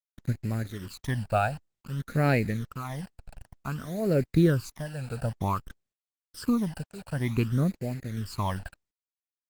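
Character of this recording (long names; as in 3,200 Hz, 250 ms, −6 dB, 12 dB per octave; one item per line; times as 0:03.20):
tremolo triangle 0.97 Hz, depth 80%
a quantiser's noise floor 8 bits, dither none
phaser sweep stages 12, 0.54 Hz, lowest notch 340–1,100 Hz
Opus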